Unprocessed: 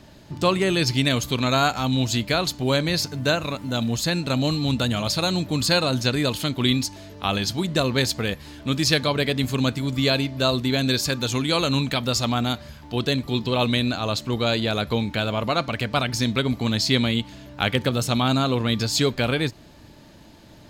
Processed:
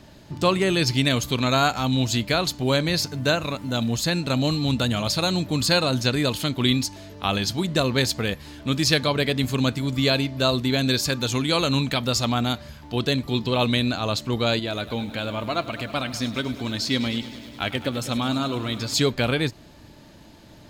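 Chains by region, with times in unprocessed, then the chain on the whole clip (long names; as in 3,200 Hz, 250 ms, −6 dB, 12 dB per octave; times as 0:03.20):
0:14.59–0:18.94: flanger 1 Hz, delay 2.9 ms, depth 1 ms, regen +52% + feedback echo at a low word length 102 ms, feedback 80%, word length 8 bits, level −15 dB
whole clip: no processing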